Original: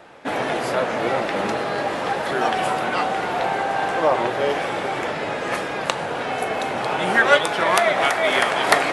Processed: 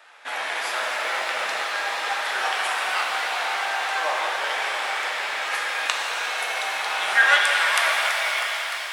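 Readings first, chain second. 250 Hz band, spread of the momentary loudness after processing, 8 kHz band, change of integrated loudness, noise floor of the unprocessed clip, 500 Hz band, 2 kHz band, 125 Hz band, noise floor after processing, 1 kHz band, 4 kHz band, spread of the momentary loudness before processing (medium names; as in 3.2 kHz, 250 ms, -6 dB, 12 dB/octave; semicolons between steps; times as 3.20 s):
-23.0 dB, 7 LU, +2.0 dB, -1.5 dB, -27 dBFS, -12.0 dB, +1.5 dB, under -30 dB, -30 dBFS, -4.5 dB, +2.5 dB, 8 LU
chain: fade out at the end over 1.65 s; high-pass 1.3 kHz 12 dB/octave; pitch-shifted reverb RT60 4 s, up +7 st, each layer -8 dB, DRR -1 dB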